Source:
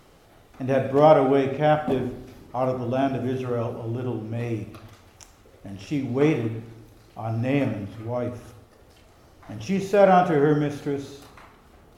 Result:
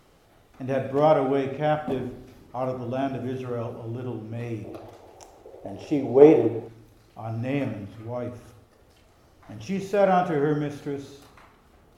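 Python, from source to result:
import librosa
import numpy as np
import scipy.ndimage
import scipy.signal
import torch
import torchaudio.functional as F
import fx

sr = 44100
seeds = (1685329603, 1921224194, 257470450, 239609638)

y = fx.band_shelf(x, sr, hz=540.0, db=13.5, octaves=1.7, at=(4.64, 6.68))
y = y * librosa.db_to_amplitude(-4.0)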